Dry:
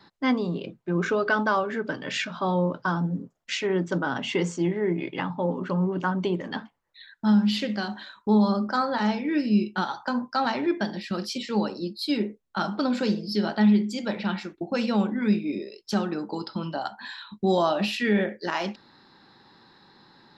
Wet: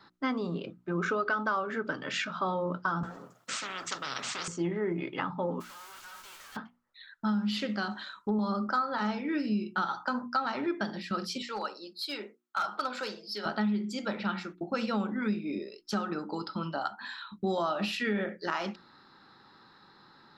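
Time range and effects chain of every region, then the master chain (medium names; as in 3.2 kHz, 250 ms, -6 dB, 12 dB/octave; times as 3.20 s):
3.03–4.48 s: high-pass 120 Hz 24 dB/octave + spectrum-flattening compressor 10:1
5.60–6.55 s: formants flattened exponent 0.3 + high-pass 990 Hz + valve stage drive 45 dB, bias 0.75
7.91–8.39 s: low-pass that closes with the level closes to 640 Hz, closed at -19 dBFS + treble shelf 4 kHz +8 dB
11.42–13.46 s: high-pass 600 Hz + hard clipper -24.5 dBFS
whole clip: peaking EQ 1.3 kHz +10.5 dB 0.33 oct; hum notches 60/120/180/240/300/360 Hz; compression 6:1, threshold -22 dBFS; trim -4 dB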